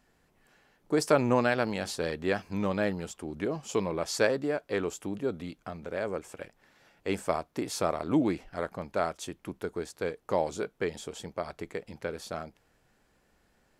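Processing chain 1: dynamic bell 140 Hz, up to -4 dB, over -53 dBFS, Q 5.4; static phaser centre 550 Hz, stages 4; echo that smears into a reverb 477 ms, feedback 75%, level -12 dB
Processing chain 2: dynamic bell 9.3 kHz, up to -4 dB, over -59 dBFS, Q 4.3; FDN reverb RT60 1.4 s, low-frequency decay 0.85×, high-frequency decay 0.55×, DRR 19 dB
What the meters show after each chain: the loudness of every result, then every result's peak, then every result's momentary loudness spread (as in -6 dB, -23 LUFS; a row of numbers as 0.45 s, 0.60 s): -34.0 LUFS, -31.5 LUFS; -13.0 dBFS, -9.0 dBFS; 14 LU, 13 LU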